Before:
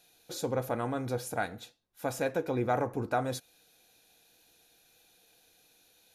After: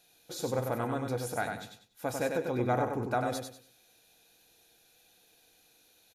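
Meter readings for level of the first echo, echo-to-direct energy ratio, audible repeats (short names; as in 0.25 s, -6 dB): -5.0 dB, -4.5 dB, 3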